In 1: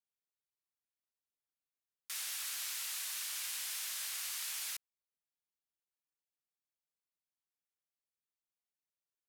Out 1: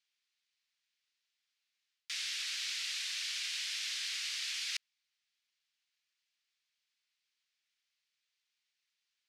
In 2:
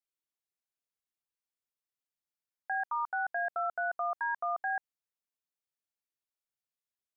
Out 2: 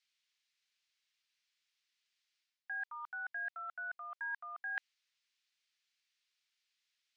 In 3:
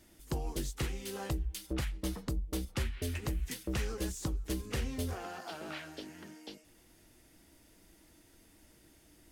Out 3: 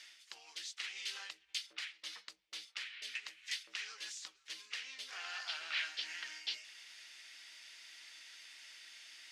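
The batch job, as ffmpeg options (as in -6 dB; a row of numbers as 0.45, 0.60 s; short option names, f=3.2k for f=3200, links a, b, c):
-af "areverse,acompressor=threshold=-47dB:ratio=6,areverse,asuperpass=centerf=3200:order=4:qfactor=0.9,volume=16.5dB"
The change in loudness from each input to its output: +2.0, -8.0, -5.5 LU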